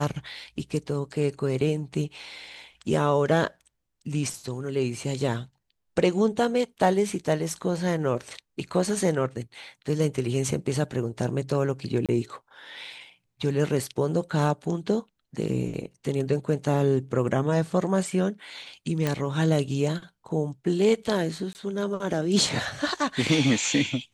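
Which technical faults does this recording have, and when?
12.06–12.09 s: dropout 27 ms
19.07 s: pop -11 dBFS
21.53–21.55 s: dropout 19 ms

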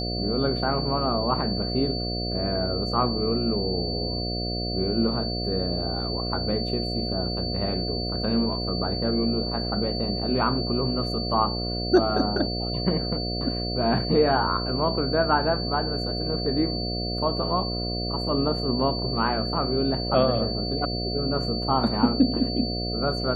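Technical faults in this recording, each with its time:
buzz 60 Hz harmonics 12 -30 dBFS
whine 4.5 kHz -31 dBFS

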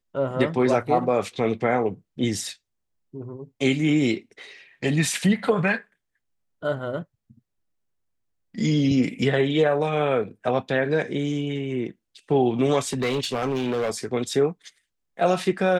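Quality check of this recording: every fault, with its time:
12.85–14.05 s: clipped -20.5 dBFS

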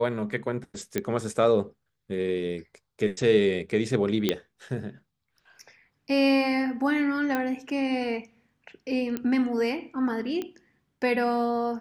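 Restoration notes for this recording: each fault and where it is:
0.98 s: pop -12 dBFS
4.29 s: pop -9 dBFS
7.35 s: pop -14 dBFS
9.17 s: pop -17 dBFS
10.42 s: pop -20 dBFS

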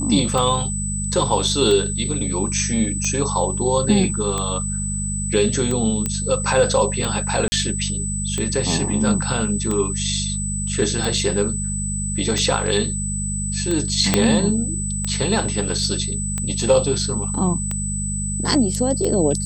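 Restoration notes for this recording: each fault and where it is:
hum 50 Hz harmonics 4 -26 dBFS
tick 45 rpm -11 dBFS
whine 8 kHz -26 dBFS
6.06 s: pop -8 dBFS
7.48–7.52 s: dropout 40 ms
14.14 s: pop 0 dBFS

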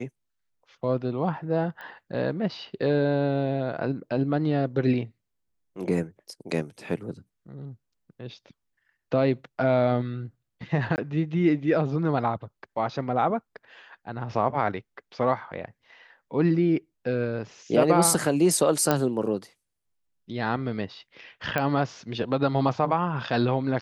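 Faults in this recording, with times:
1.81 s: pop -28 dBFS
10.96–10.98 s: dropout 19 ms
18.91 s: pop -8 dBFS
21.58 s: pop -12 dBFS

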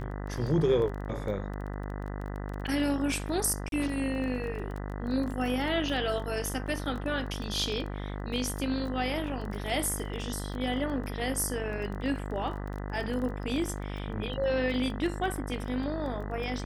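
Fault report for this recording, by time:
buzz 50 Hz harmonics 40 -36 dBFS
crackle 12 per s -35 dBFS
3.69–3.72 s: dropout 32 ms

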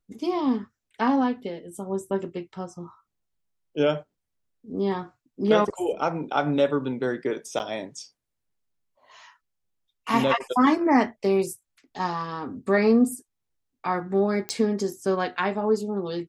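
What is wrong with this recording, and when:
7.59–7.60 s: dropout 8.8 ms
14.49 s: pop -13 dBFS

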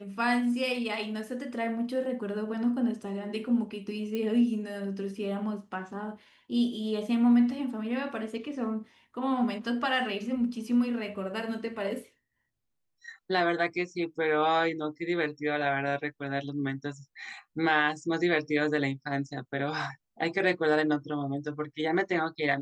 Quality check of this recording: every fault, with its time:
4.15 s: pop -21 dBFS

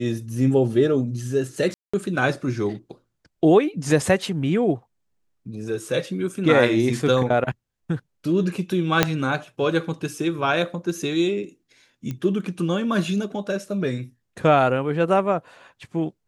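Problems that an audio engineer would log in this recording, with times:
1.74–1.94 s: dropout 195 ms
9.03 s: pop 0 dBFS
12.11 s: pop -18 dBFS

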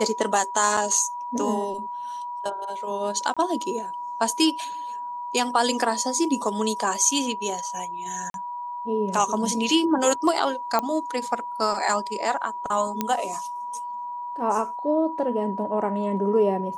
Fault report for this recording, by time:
whine 970 Hz -30 dBFS
0.77 s: dropout 4.3 ms
3.34–3.37 s: dropout 26 ms
8.30–8.34 s: dropout 42 ms
10.79 s: pop -10 dBFS
13.01 s: pop -9 dBFS

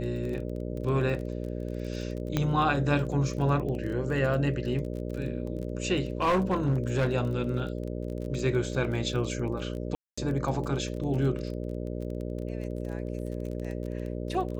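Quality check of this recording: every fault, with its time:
buzz 60 Hz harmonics 10 -34 dBFS
crackle 24 per s -35 dBFS
2.37 s: pop -13 dBFS
6.22–7.15 s: clipped -20.5 dBFS
9.95–10.18 s: dropout 225 ms

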